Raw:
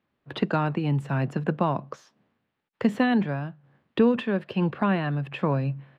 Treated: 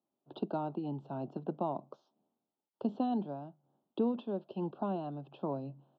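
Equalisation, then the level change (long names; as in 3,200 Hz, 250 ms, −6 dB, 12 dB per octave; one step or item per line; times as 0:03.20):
Butterworth band-reject 2,000 Hz, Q 0.61
loudspeaker in its box 320–3,300 Hz, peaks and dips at 490 Hz −9 dB, 1,100 Hz −7 dB, 2,000 Hz −9 dB
−4.0 dB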